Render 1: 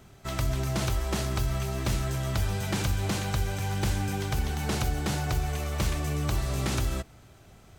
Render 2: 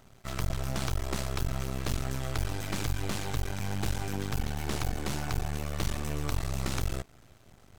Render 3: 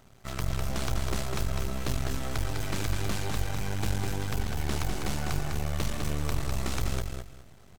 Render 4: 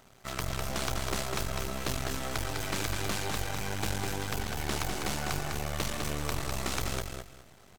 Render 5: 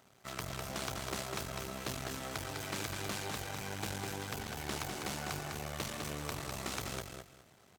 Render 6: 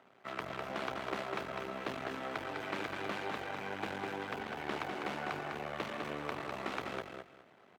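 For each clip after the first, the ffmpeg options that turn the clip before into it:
-af "aeval=exprs='max(val(0),0)':c=same"
-af "aecho=1:1:202|404|606:0.596|0.137|0.0315"
-af "lowshelf=f=230:g=-9.5,volume=2.5dB"
-af "highpass=85,volume=-5.5dB"
-filter_complex "[0:a]acrossover=split=200 3100:gain=0.141 1 0.0708[a][b][c];[a][b][c]amix=inputs=3:normalize=0,volume=3.5dB"

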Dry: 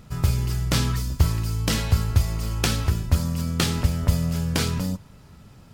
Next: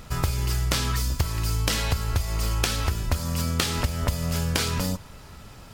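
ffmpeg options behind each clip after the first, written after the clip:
-af "equalizer=f=160:t=o:w=2.2:g=-9.5,acompressor=threshold=-29dB:ratio=10,volume=8.5dB"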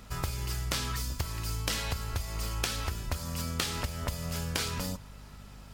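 -af "lowshelf=f=440:g=-3.5,aeval=exprs='val(0)+0.00794*(sin(2*PI*50*n/s)+sin(2*PI*2*50*n/s)/2+sin(2*PI*3*50*n/s)/3+sin(2*PI*4*50*n/s)/4+sin(2*PI*5*50*n/s)/5)':c=same,volume=-6dB"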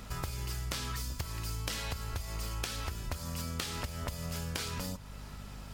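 -af "acompressor=threshold=-43dB:ratio=2,volume=3.5dB"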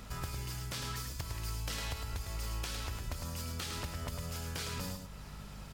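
-af "asoftclip=type=tanh:threshold=-24.5dB,aecho=1:1:106:0.501,volume=-2dB"

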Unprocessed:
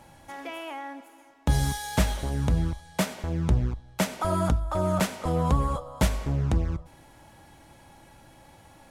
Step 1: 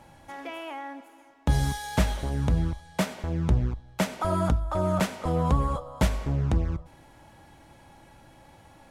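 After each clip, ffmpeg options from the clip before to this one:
-af "highshelf=f=5.3k:g=-5.5"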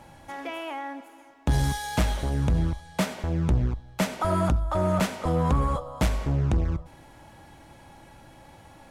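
-af "asoftclip=type=tanh:threshold=-18.5dB,volume=3dB"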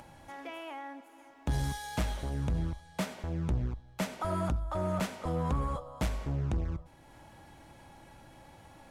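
-af "acompressor=mode=upward:threshold=-39dB:ratio=2.5,volume=-8dB"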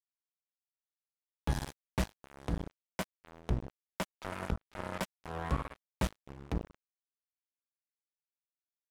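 -af "acrusher=bits=3:mix=0:aa=0.5,volume=5.5dB"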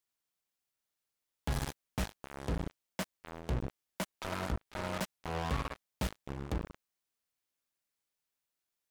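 -af "volume=35dB,asoftclip=hard,volume=-35dB,volume=8dB"

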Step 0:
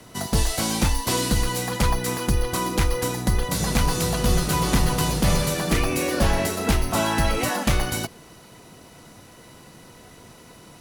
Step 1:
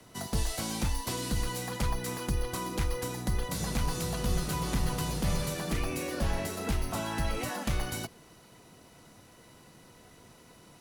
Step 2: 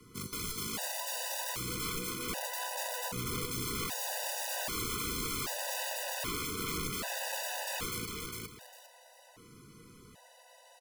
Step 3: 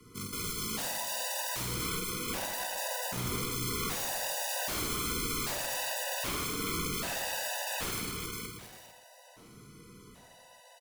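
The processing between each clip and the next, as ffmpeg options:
-filter_complex "[0:a]acrossover=split=190[a][b];[b]acompressor=threshold=-23dB:ratio=6[c];[a][c]amix=inputs=2:normalize=0,volume=-8.5dB"
-af "aeval=exprs='(mod(31.6*val(0)+1,2)-1)/31.6':c=same,aecho=1:1:404|808|1212:0.708|0.163|0.0375,afftfilt=real='re*gt(sin(2*PI*0.64*pts/sr)*(1-2*mod(floor(b*sr/1024/500),2)),0)':imag='im*gt(sin(2*PI*0.64*pts/sr)*(1-2*mod(floor(b*sr/1024/500),2)),0)':win_size=1024:overlap=0.75"
-af "aecho=1:1:50|115|199.5|309.4|452.2:0.631|0.398|0.251|0.158|0.1"

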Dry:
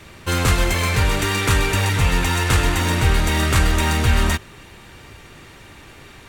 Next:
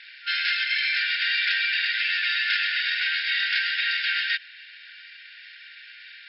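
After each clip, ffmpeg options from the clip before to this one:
-filter_complex "[0:a]afftfilt=real='re*between(b*sr/4096,1400,5400)':imag='im*between(b*sr/4096,1400,5400)':win_size=4096:overlap=0.75,asplit=2[a][b];[b]alimiter=limit=-19dB:level=0:latency=1:release=119,volume=-1dB[c];[a][c]amix=inputs=2:normalize=0,volume=-3dB"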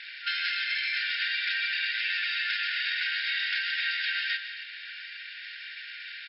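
-filter_complex "[0:a]acompressor=threshold=-32dB:ratio=4,asplit=2[a][b];[b]aecho=0:1:59|149|166|234|278:0.15|0.237|0.237|0.15|0.15[c];[a][c]amix=inputs=2:normalize=0,volume=3dB"

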